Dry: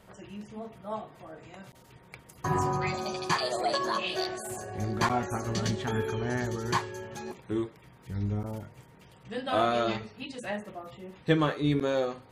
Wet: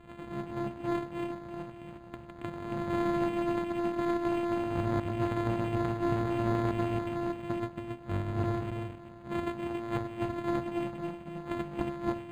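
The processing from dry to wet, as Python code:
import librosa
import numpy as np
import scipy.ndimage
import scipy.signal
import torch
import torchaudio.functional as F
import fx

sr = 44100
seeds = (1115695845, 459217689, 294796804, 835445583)

p1 = np.r_[np.sort(x[:len(x) // 128 * 128].reshape(-1, 128), axis=1).ravel(), x[len(x) // 128 * 128:]]
p2 = fx.high_shelf(p1, sr, hz=7100.0, db=7.5)
p3 = fx.over_compress(p2, sr, threshold_db=-32.0, ratio=-0.5)
p4 = p3 + fx.echo_single(p3, sr, ms=276, db=-3.5, dry=0)
p5 = fx.formant_shift(p4, sr, semitones=-3)
p6 = scipy.signal.sosfilt(scipy.signal.butter(4, 9100.0, 'lowpass', fs=sr, output='sos'), p5)
y = np.interp(np.arange(len(p6)), np.arange(len(p6))[::8], p6[::8])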